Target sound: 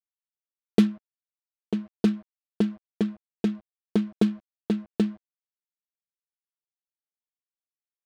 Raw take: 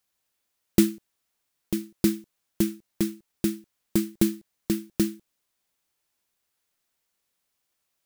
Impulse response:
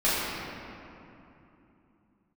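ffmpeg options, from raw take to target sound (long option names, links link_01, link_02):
-af "highpass=110,equalizer=frequency=160:width_type=q:width=4:gain=-7,equalizer=frequency=450:width_type=q:width=4:gain=8,equalizer=frequency=730:width_type=q:width=4:gain=6,equalizer=frequency=2100:width_type=q:width=4:gain=-8,lowpass=frequency=4300:width=0.5412,lowpass=frequency=4300:width=1.3066,aecho=1:1:4.5:0.76,aeval=exprs='val(0)*gte(abs(val(0)),0.00631)':channel_layout=same,adynamicsmooth=sensitivity=6.5:basefreq=790"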